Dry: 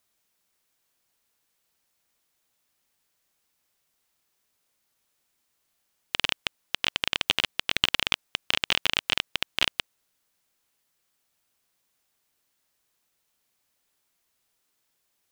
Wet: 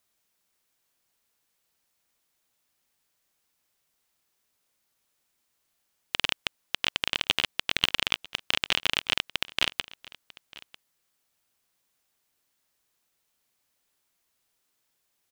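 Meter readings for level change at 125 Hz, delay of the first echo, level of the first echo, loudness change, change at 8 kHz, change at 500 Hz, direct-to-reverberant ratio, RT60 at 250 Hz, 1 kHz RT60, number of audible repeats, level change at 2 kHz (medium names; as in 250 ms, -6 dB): -1.0 dB, 946 ms, -21.0 dB, -1.0 dB, -1.0 dB, -1.0 dB, no reverb, no reverb, no reverb, 1, -1.0 dB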